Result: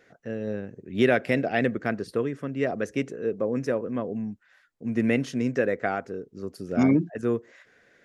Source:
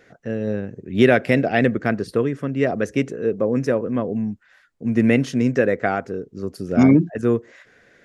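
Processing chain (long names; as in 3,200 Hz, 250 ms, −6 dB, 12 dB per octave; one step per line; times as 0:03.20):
low-shelf EQ 170 Hz −5 dB
level −5.5 dB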